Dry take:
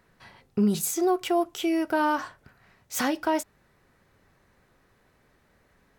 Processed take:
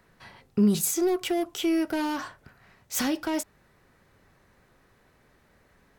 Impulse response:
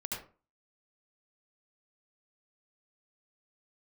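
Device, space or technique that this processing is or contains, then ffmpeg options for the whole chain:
one-band saturation: -filter_complex "[0:a]acrossover=split=410|2500[link_01][link_02][link_03];[link_02]asoftclip=type=tanh:threshold=-35dB[link_04];[link_01][link_04][link_03]amix=inputs=3:normalize=0,volume=2dB"

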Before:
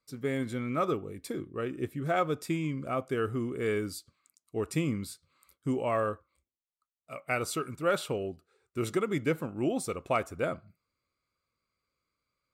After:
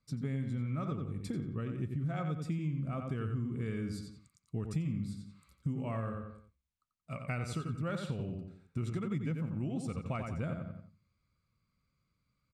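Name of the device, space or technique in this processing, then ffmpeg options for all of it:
jukebox: -filter_complex "[0:a]lowpass=7900,lowshelf=frequency=260:width_type=q:width=1.5:gain=12,asplit=2[link_01][link_02];[link_02]adelay=89,lowpass=frequency=4700:poles=1,volume=-6dB,asplit=2[link_03][link_04];[link_04]adelay=89,lowpass=frequency=4700:poles=1,volume=0.34,asplit=2[link_05][link_06];[link_06]adelay=89,lowpass=frequency=4700:poles=1,volume=0.34,asplit=2[link_07][link_08];[link_08]adelay=89,lowpass=frequency=4700:poles=1,volume=0.34[link_09];[link_01][link_03][link_05][link_07][link_09]amix=inputs=5:normalize=0,acompressor=threshold=-33dB:ratio=4,volume=-1.5dB"

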